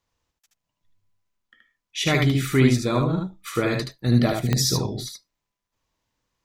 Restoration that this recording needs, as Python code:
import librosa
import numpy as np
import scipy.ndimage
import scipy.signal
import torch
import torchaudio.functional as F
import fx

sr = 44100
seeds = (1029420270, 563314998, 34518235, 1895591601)

y = fx.fix_declick_ar(x, sr, threshold=10.0)
y = fx.fix_echo_inverse(y, sr, delay_ms=75, level_db=-3.5)